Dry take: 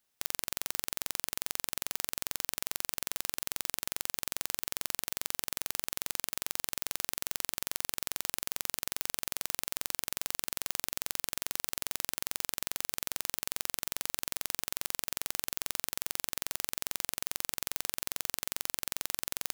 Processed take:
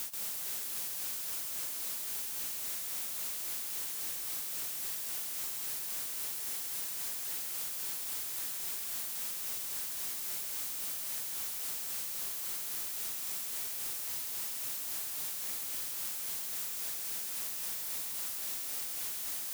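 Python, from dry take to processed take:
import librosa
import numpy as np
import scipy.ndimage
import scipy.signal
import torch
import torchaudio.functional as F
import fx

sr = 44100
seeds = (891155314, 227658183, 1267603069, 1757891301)

y = scipy.signal.sosfilt(scipy.signal.butter(2, 110.0, 'highpass', fs=sr, output='sos'), x)
y = fx.high_shelf(y, sr, hz=4800.0, db=12.0)
y = fx.paulstretch(y, sr, seeds[0], factor=6.1, window_s=0.05, from_s=1.2)
y = y + 10.0 ** (-5.5 / 20.0) * np.pad(y, (int(135 * sr / 1000.0), 0))[:len(y)]
y = 10.0 ** (-29.5 / 20.0) * np.tanh(y / 10.0 ** (-29.5 / 20.0))
y = y * librosa.db_to_amplitude(-5.5)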